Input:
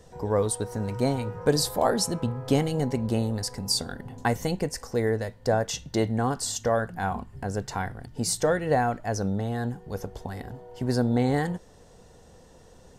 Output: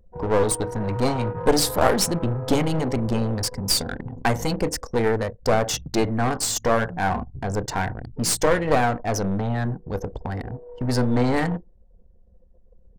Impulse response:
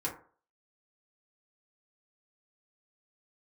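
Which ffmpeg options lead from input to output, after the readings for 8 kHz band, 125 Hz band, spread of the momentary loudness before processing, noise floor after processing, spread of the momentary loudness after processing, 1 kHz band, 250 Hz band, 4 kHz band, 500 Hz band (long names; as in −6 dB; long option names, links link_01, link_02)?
+5.0 dB, +3.0 dB, 10 LU, −54 dBFS, 9 LU, +5.0 dB, +3.5 dB, +4.5 dB, +3.5 dB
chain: -filter_complex "[0:a]asplit=2[link_01][link_02];[1:a]atrim=start_sample=2205[link_03];[link_02][link_03]afir=irnorm=-1:irlink=0,volume=-14.5dB[link_04];[link_01][link_04]amix=inputs=2:normalize=0,aeval=exprs='clip(val(0),-1,0.0316)':channel_layout=same,anlmdn=1,volume=6dB"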